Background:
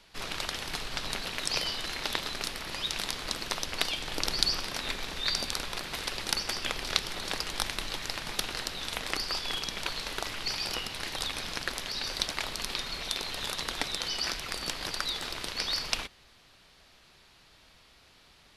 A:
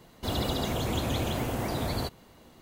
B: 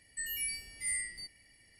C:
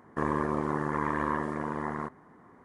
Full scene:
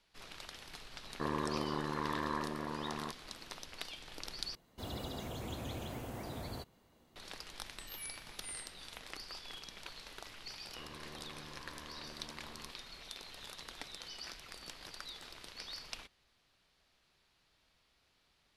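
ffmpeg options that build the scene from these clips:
-filter_complex "[3:a]asplit=2[a][b];[0:a]volume=-15dB[c];[2:a]aecho=1:1:0.8:0.65[d];[b]aeval=exprs='(tanh(50.1*val(0)+0.65)-tanh(0.65))/50.1':c=same[e];[c]asplit=2[f][g];[f]atrim=end=4.554[h];[1:a]atrim=end=2.61,asetpts=PTS-STARTPTS,volume=-13dB[i];[g]atrim=start=7.156[j];[a]atrim=end=2.64,asetpts=PTS-STARTPTS,volume=-7.5dB,afade=t=in:d=0.004:c=hsin,afade=t=out:st=2.636:d=0.004:c=hsin,adelay=1030[k];[d]atrim=end=1.79,asetpts=PTS-STARTPTS,volume=-14dB,afade=t=in:d=0.004:c=hsin,afade=t=out:st=1.786:d=0.004:c=hsin,adelay=7610[l];[e]atrim=end=2.64,asetpts=PTS-STARTPTS,volume=-14dB,afade=t=in:d=0.004:c=hsin,afade=t=out:st=2.636:d=0.004:c=hsin,adelay=10620[m];[h][i]acrossfade=d=0.004:c1=hsin:c2=hsin[n];[n][j]acrossfade=d=0.004:c1=hsin:c2=hsin[o];[o][k][l][m]amix=inputs=4:normalize=0"

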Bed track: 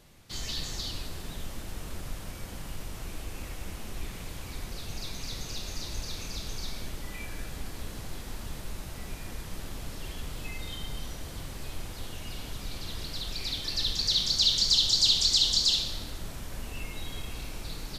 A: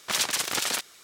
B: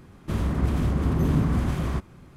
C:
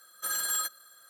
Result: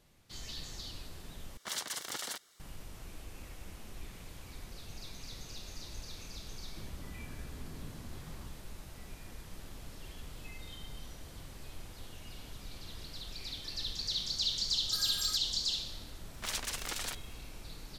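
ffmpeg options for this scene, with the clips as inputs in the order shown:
-filter_complex "[1:a]asplit=2[a][b];[0:a]volume=-9dB[c];[a]bandreject=f=2.5k:w=5.6[d];[2:a]acompressor=threshold=-31dB:ratio=6:attack=3.2:release=140:knee=1:detection=peak[e];[c]asplit=2[f][g];[f]atrim=end=1.574[h];[d]atrim=end=1.03,asetpts=PTS-STARTPTS,volume=-12dB[i];[g]atrim=start=2.596[j];[e]atrim=end=2.36,asetpts=PTS-STARTPTS,volume=-14.5dB,afade=t=in:d=0.004:c=hsin,afade=t=out:st=2.356:d=0.004:c=hsin,adelay=6490[k];[3:a]atrim=end=1.09,asetpts=PTS-STARTPTS,volume=-12dB,afade=t=in:d=0.004:c=hsin,afade=t=out:st=1.086:d=0.004:c=hsin,adelay=14690[l];[b]atrim=end=1.03,asetpts=PTS-STARTPTS,volume=-11.5dB,afade=t=in:d=0.004:c=hsin,afade=t=out:st=1.026:d=0.004:c=hsin,adelay=16340[m];[h][i]acrossfade=d=0.004:c1=hsin:c2=hsin[n];[n][j]acrossfade=d=0.004:c1=hsin:c2=hsin[o];[o][k][l][m]amix=inputs=4:normalize=0"

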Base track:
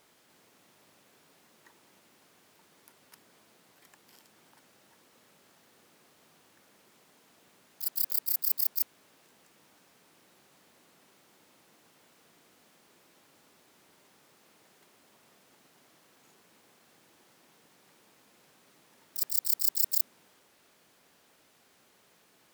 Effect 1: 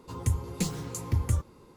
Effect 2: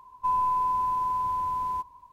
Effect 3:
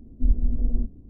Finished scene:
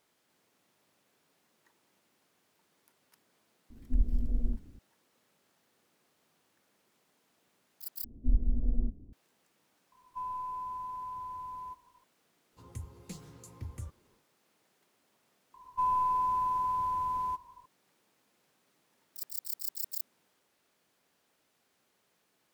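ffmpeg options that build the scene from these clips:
-filter_complex "[3:a]asplit=2[a][b];[2:a]asplit=2[c][d];[0:a]volume=-10dB,asplit=2[e][f];[e]atrim=end=8.044[g];[b]atrim=end=1.09,asetpts=PTS-STARTPTS,volume=-6dB[h];[f]atrim=start=9.126[i];[a]atrim=end=1.09,asetpts=PTS-STARTPTS,volume=-7dB,afade=t=in:d=0.004:c=hsin,afade=t=out:st=1.086:d=0.004:c=hsin,adelay=3700[j];[c]atrim=end=2.12,asetpts=PTS-STARTPTS,volume=-13dB,afade=t=in:d=0.004:c=hsin,afade=t=out:st=2.116:d=0.004:c=hsin,adelay=9920[k];[1:a]atrim=end=1.76,asetpts=PTS-STARTPTS,volume=-15.5dB,afade=t=in:d=0.1,afade=t=out:st=1.66:d=0.1,adelay=12490[l];[d]atrim=end=2.12,asetpts=PTS-STARTPTS,volume=-3.5dB,afade=t=in:d=0.004:c=hsin,afade=t=out:st=2.116:d=0.004:c=hsin,adelay=15540[m];[g][h]acrossfade=d=0.004:c1=hsin:c2=hsin[n];[n][i]acrossfade=d=0.004:c1=hsin:c2=hsin[o];[o][j][k][l][m]amix=inputs=5:normalize=0"

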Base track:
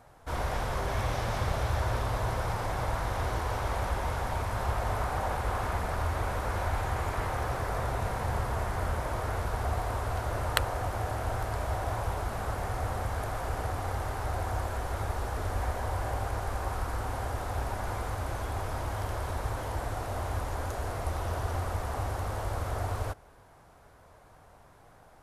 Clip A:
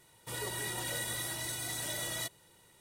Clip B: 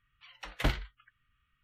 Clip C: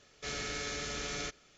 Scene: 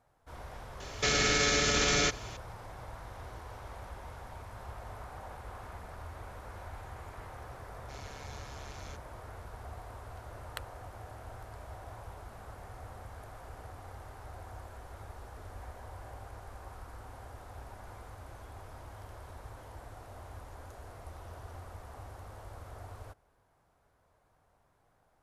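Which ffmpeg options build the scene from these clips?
-filter_complex "[3:a]asplit=2[a][b];[0:a]volume=-14.5dB[c];[a]alimiter=level_in=32.5dB:limit=-1dB:release=50:level=0:latency=1[d];[b]tremolo=f=140:d=0.824[e];[d]atrim=end=1.57,asetpts=PTS-STARTPTS,volume=-17dB,afade=t=in:d=0.004:c=hsin,afade=t=out:st=1.566:d=0.004:c=hsin,adelay=800[f];[e]atrim=end=1.57,asetpts=PTS-STARTPTS,volume=-10dB,afade=t=in:d=0.004:c=hsin,afade=t=out:st=1.566:d=0.004:c=hsin,adelay=7660[g];[c][f][g]amix=inputs=3:normalize=0"

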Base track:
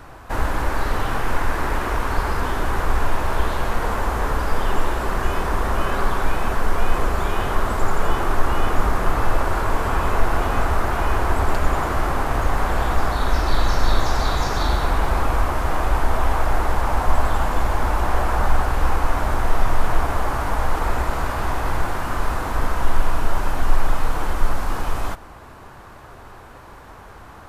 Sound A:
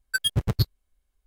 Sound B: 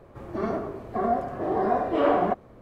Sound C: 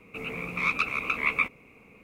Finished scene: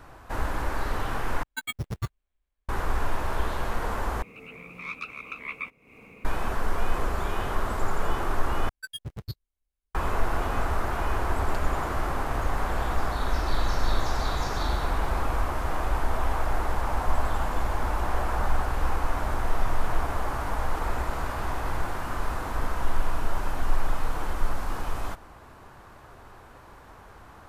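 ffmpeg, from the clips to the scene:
-filter_complex "[1:a]asplit=2[a][b];[0:a]volume=-7dB[c];[a]acrusher=samples=8:mix=1:aa=0.000001[d];[3:a]acompressor=mode=upward:threshold=-27dB:ratio=4:attack=0.19:release=302:knee=2.83:detection=peak[e];[c]asplit=4[f][g][h][i];[f]atrim=end=1.434[j];[d]atrim=end=1.26,asetpts=PTS-STARTPTS,volume=-8.5dB[k];[g]atrim=start=2.686:end=4.224[l];[e]atrim=end=2.03,asetpts=PTS-STARTPTS,volume=-10dB[m];[h]atrim=start=6.246:end=8.694[n];[b]atrim=end=1.26,asetpts=PTS-STARTPTS,volume=-13.5dB[o];[i]atrim=start=9.946[p];[j][k]acrossfade=d=0.004:c1=hsin:c2=hsin[q];[q][l]acrossfade=d=0.004:c1=hsin:c2=hsin[r];[r][m]acrossfade=d=0.004:c1=hsin:c2=hsin[s];[s][n]acrossfade=d=0.004:c1=hsin:c2=hsin[t];[t][o]acrossfade=d=0.004:c1=hsin:c2=hsin[u];[u][p]acrossfade=d=0.004:c1=hsin:c2=hsin"

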